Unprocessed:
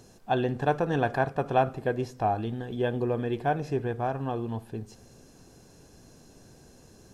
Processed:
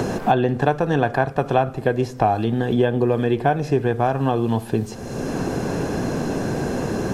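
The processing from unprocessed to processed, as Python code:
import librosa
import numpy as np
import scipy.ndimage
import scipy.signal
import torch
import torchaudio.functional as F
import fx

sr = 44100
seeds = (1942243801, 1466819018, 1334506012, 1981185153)

y = fx.band_squash(x, sr, depth_pct=100)
y = y * 10.0 ** (8.0 / 20.0)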